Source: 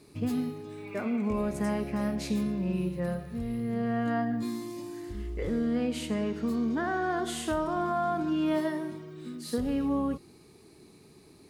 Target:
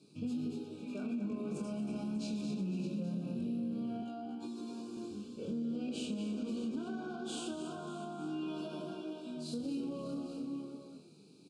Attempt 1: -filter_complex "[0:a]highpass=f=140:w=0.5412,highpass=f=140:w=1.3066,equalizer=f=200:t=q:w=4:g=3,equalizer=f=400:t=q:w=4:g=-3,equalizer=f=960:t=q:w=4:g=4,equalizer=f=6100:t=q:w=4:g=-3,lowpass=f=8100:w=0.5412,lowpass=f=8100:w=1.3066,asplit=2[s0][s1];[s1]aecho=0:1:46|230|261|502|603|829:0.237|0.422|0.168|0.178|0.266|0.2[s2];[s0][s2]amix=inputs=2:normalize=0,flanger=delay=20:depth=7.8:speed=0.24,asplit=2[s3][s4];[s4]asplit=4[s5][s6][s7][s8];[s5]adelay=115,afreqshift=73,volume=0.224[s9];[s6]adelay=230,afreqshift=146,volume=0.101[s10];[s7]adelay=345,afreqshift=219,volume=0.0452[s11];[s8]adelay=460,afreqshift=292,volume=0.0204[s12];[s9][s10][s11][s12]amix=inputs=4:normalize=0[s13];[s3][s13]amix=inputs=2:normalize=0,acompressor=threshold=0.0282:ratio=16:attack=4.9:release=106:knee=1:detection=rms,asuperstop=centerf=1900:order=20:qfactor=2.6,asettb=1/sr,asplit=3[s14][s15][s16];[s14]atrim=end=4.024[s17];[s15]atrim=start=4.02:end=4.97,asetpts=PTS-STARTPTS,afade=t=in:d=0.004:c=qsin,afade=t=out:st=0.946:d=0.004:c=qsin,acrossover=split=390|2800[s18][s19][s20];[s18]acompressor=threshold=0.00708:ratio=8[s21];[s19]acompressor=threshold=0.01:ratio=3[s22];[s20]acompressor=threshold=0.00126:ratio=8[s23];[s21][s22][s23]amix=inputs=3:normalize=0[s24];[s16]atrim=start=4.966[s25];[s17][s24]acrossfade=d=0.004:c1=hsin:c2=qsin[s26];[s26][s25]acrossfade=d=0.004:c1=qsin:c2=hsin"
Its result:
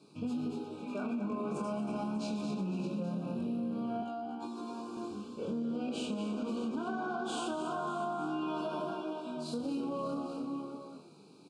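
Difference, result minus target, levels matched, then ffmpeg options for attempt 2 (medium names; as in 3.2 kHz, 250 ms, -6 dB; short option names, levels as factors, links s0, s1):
1 kHz band +8.5 dB
-filter_complex "[0:a]highpass=f=140:w=0.5412,highpass=f=140:w=1.3066,equalizer=f=200:t=q:w=4:g=3,equalizer=f=400:t=q:w=4:g=-3,equalizer=f=960:t=q:w=4:g=4,equalizer=f=6100:t=q:w=4:g=-3,lowpass=f=8100:w=0.5412,lowpass=f=8100:w=1.3066,asplit=2[s0][s1];[s1]aecho=0:1:46|230|261|502|603|829:0.237|0.422|0.168|0.178|0.266|0.2[s2];[s0][s2]amix=inputs=2:normalize=0,flanger=delay=20:depth=7.8:speed=0.24,asplit=2[s3][s4];[s4]asplit=4[s5][s6][s7][s8];[s5]adelay=115,afreqshift=73,volume=0.224[s9];[s6]adelay=230,afreqshift=146,volume=0.101[s10];[s7]adelay=345,afreqshift=219,volume=0.0452[s11];[s8]adelay=460,afreqshift=292,volume=0.0204[s12];[s9][s10][s11][s12]amix=inputs=4:normalize=0[s13];[s3][s13]amix=inputs=2:normalize=0,acompressor=threshold=0.0282:ratio=16:attack=4.9:release=106:knee=1:detection=rms,asuperstop=centerf=1900:order=20:qfactor=2.6,equalizer=f=990:t=o:w=1.5:g=-14.5,asettb=1/sr,asplit=3[s14][s15][s16];[s14]atrim=end=4.024[s17];[s15]atrim=start=4.02:end=4.97,asetpts=PTS-STARTPTS,afade=t=in:d=0.004:c=qsin,afade=t=out:st=0.946:d=0.004:c=qsin,acrossover=split=390|2800[s18][s19][s20];[s18]acompressor=threshold=0.00708:ratio=8[s21];[s19]acompressor=threshold=0.01:ratio=3[s22];[s20]acompressor=threshold=0.00126:ratio=8[s23];[s21][s22][s23]amix=inputs=3:normalize=0[s24];[s16]atrim=start=4.966[s25];[s17][s24]acrossfade=d=0.004:c1=hsin:c2=qsin[s26];[s26][s25]acrossfade=d=0.004:c1=qsin:c2=hsin"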